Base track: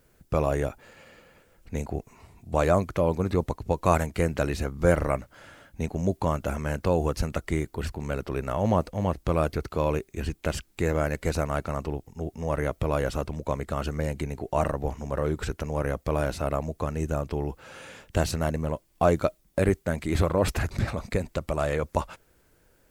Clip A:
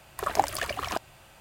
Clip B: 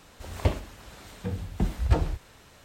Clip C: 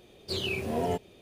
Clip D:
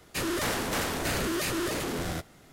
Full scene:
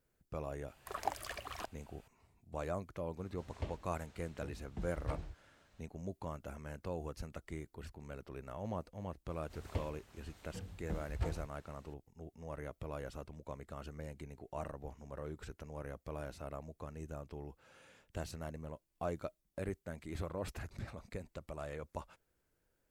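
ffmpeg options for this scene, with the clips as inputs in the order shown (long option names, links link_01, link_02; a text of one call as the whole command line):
ffmpeg -i bed.wav -i cue0.wav -i cue1.wav -filter_complex "[2:a]asplit=2[link_01][link_02];[0:a]volume=-17.5dB[link_03];[1:a]asubboost=boost=6.5:cutoff=75[link_04];[link_01]lowpass=7800[link_05];[link_04]atrim=end=1.4,asetpts=PTS-STARTPTS,volume=-13dB,afade=type=in:duration=0.004:curve=hsin,afade=type=out:start_time=1.396:duration=0.004:curve=hsin,adelay=680[link_06];[link_05]atrim=end=2.64,asetpts=PTS-STARTPTS,volume=-17dB,afade=type=in:duration=0.004:curve=hsin,afade=type=out:start_time=2.636:duration=0.004:curve=hsin,adelay=139797S[link_07];[link_02]atrim=end=2.64,asetpts=PTS-STARTPTS,volume=-15dB,afade=type=in:duration=0.004:curve=hsin,afade=type=out:start_time=2.636:duration=0.004:curve=hsin,adelay=410130S[link_08];[link_03][link_06][link_07][link_08]amix=inputs=4:normalize=0" out.wav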